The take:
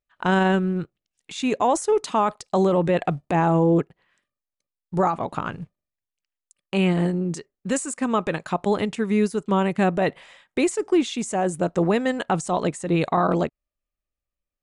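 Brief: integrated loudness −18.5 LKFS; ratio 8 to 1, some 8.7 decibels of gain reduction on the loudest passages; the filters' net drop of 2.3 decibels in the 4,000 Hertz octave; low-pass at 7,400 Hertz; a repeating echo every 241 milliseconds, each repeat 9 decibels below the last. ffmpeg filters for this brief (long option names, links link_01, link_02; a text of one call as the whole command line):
ffmpeg -i in.wav -af "lowpass=7400,equalizer=frequency=4000:width_type=o:gain=-3,acompressor=threshold=-24dB:ratio=8,aecho=1:1:241|482|723|964:0.355|0.124|0.0435|0.0152,volume=11dB" out.wav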